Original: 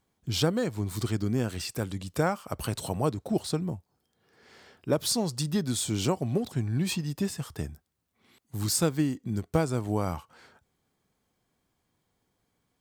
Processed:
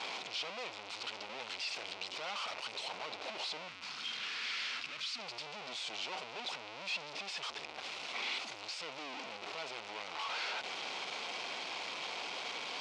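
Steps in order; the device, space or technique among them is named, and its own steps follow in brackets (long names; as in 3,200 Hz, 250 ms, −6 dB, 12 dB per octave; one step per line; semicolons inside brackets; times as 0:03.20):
home computer beeper (sign of each sample alone; loudspeaker in its box 780–4,800 Hz, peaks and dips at 1,200 Hz −4 dB, 1,700 Hz −9 dB, 2,500 Hz +5 dB)
0:03.68–0:05.19: flat-topped bell 560 Hz −13 dB
level −3.5 dB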